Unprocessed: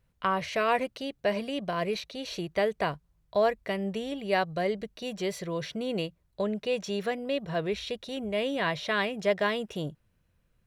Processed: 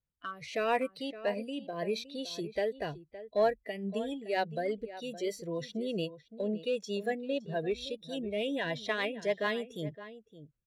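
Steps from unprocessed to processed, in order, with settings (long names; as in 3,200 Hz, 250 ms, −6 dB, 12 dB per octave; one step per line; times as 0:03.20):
noise reduction from a noise print of the clip's start 17 dB
in parallel at −10.5 dB: hard clipping −24 dBFS, distortion −13 dB
on the sum: rotating-speaker cabinet horn 0.8 Hz, later 6.7 Hz, at 0:02.86
slap from a distant wall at 97 metres, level −14 dB
level −3 dB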